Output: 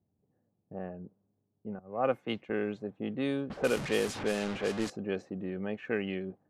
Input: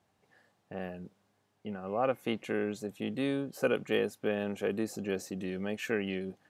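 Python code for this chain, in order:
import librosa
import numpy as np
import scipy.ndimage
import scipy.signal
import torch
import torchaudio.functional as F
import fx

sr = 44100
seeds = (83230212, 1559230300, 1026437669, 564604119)

y = fx.delta_mod(x, sr, bps=64000, step_db=-30.5, at=(3.5, 4.9))
y = fx.env_lowpass(y, sr, base_hz=300.0, full_db=-25.0)
y = fx.band_widen(y, sr, depth_pct=100, at=(1.79, 2.5))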